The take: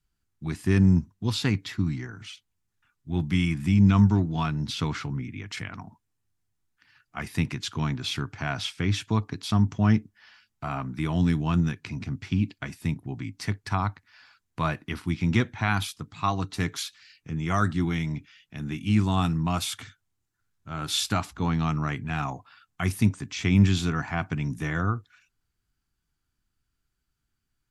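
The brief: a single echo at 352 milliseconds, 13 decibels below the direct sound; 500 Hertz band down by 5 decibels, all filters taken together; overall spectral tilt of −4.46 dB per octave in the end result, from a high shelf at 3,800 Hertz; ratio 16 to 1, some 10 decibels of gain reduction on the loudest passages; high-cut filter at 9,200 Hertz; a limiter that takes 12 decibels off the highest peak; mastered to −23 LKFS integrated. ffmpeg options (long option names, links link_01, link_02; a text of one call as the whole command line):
ffmpeg -i in.wav -af "lowpass=9200,equalizer=frequency=500:width_type=o:gain=-8,highshelf=frequency=3800:gain=9,acompressor=threshold=-24dB:ratio=16,alimiter=limit=-24dB:level=0:latency=1,aecho=1:1:352:0.224,volume=11.5dB" out.wav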